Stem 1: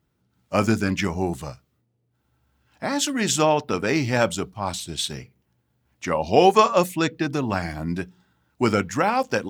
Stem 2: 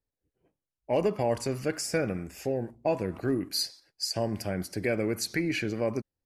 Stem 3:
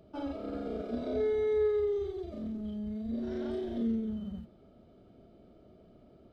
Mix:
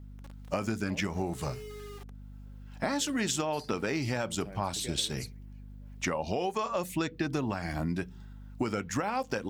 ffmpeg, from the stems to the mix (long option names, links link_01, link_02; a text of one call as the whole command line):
ffmpeg -i stem1.wav -i stem2.wav -i stem3.wav -filter_complex "[0:a]volume=2.5dB,asplit=2[link_01][link_02];[1:a]acompressor=threshold=-32dB:ratio=6,volume=-6.5dB[link_03];[2:a]acrusher=bits=4:mix=0:aa=0.000001,volume=-19dB[link_04];[link_02]apad=whole_len=275790[link_05];[link_03][link_05]sidechaingate=range=-32dB:threshold=-39dB:ratio=16:detection=peak[link_06];[link_01][link_04]amix=inputs=2:normalize=0,aeval=exprs='val(0)+0.00562*(sin(2*PI*50*n/s)+sin(2*PI*2*50*n/s)/2+sin(2*PI*3*50*n/s)/3+sin(2*PI*4*50*n/s)/4+sin(2*PI*5*50*n/s)/5)':channel_layout=same,alimiter=limit=-10.5dB:level=0:latency=1:release=272,volume=0dB[link_07];[link_06][link_07]amix=inputs=2:normalize=0,acompressor=threshold=-28dB:ratio=6" out.wav